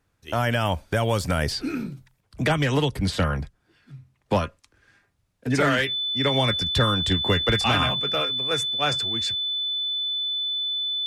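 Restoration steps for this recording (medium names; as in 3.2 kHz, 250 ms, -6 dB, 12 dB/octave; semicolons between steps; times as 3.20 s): band-stop 3.5 kHz, Q 30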